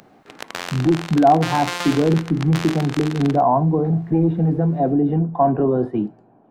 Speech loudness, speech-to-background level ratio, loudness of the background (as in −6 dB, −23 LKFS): −19.0 LKFS, 11.5 dB, −30.5 LKFS